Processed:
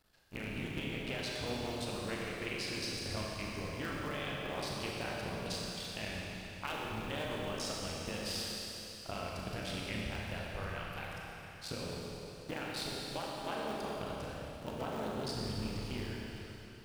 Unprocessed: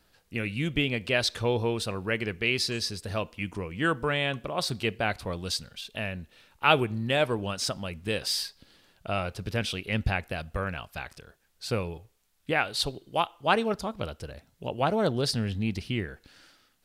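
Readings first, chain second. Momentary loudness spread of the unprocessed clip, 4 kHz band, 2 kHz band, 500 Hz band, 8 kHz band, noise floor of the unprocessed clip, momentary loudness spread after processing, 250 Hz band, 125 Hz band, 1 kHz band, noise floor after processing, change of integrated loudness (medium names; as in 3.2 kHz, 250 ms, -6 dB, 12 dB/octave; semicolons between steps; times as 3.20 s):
12 LU, -9.0 dB, -11.0 dB, -10.5 dB, -7.0 dB, -68 dBFS, 6 LU, -9.0 dB, -10.0 dB, -11.0 dB, -50 dBFS, -10.5 dB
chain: cycle switcher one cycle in 3, muted; compression, threshold -32 dBFS, peak gain reduction 15.5 dB; Schroeder reverb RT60 3.4 s, combs from 29 ms, DRR -3.5 dB; trim -6.5 dB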